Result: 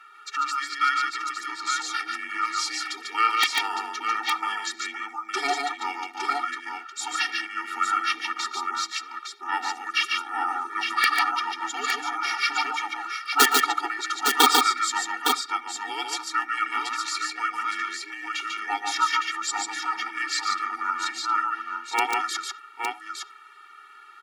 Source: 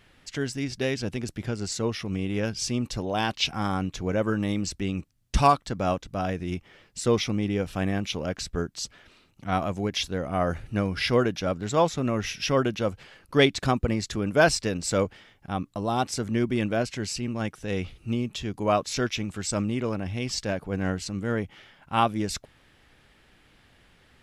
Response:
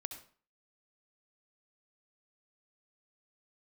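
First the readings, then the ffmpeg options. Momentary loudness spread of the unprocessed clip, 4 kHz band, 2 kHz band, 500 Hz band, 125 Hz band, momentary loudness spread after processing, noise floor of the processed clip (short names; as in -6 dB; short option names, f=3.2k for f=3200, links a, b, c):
9 LU, +5.5 dB, +7.0 dB, -13.5 dB, under -40 dB, 11 LU, -48 dBFS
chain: -filter_complex "[0:a]afreqshift=-430,highpass=f=1.3k:t=q:w=4.2,aeval=exprs='(mod(3.35*val(0)+1,2)-1)/3.35':c=same,aecho=1:1:118|145|861:0.112|0.668|0.531,asplit=2[a][b];[1:a]atrim=start_sample=2205,afade=t=out:st=0.14:d=0.01,atrim=end_sample=6615,lowpass=4.3k[c];[b][c]afir=irnorm=-1:irlink=0,volume=-8dB[d];[a][d]amix=inputs=2:normalize=0,afftfilt=real='re*eq(mod(floor(b*sr/1024/240),2),1)':imag='im*eq(mod(floor(b*sr/1024/240),2),1)':win_size=1024:overlap=0.75,volume=4.5dB"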